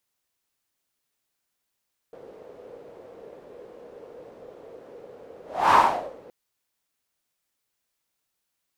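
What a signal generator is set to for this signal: whoosh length 4.17 s, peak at 3.60 s, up 0.31 s, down 0.49 s, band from 480 Hz, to 1 kHz, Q 5, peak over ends 29.5 dB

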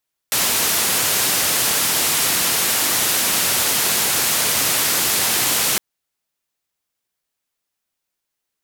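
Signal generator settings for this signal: noise band 91–15000 Hz, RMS -18.5 dBFS 5.46 s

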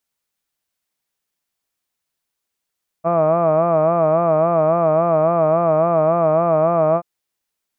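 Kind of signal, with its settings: formant-synthesis vowel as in hud, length 3.98 s, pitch 163 Hz, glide 0 st, vibrato 3.6 Hz, vibrato depth 0.95 st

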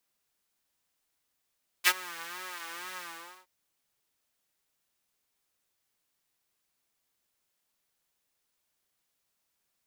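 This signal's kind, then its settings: synth patch with vibrato F4, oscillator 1 triangle, interval -12 st, detune 13 cents, oscillator 2 level -3.5 dB, sub -4.5 dB, noise -14.5 dB, filter highpass, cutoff 950 Hz, Q 1.5, filter envelope 1.5 oct, filter decay 0.08 s, filter sustain 35%, attack 36 ms, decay 0.05 s, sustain -23 dB, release 0.48 s, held 1.14 s, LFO 2.1 Hz, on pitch 95 cents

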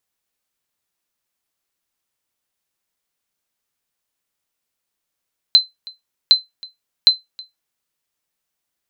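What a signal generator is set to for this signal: sonar ping 4.07 kHz, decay 0.17 s, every 0.76 s, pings 3, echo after 0.32 s, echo -24 dB -1.5 dBFS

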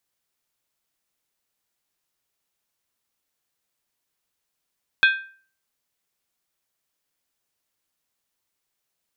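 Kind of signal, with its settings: skin hit, lowest mode 1.57 kHz, decay 0.44 s, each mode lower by 5 dB, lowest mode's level -10.5 dB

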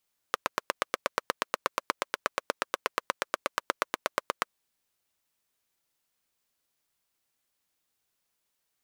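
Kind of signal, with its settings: single-cylinder engine model, steady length 4.16 s, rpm 1000, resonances 560/1100 Hz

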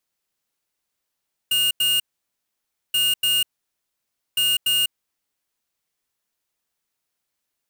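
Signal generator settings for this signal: beep pattern square 2.84 kHz, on 0.20 s, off 0.09 s, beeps 2, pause 0.94 s, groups 3, -19.5 dBFS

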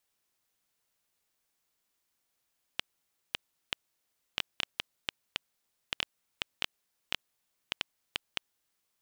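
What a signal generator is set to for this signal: random clicks 3.9 per s -11 dBFS 5.73 s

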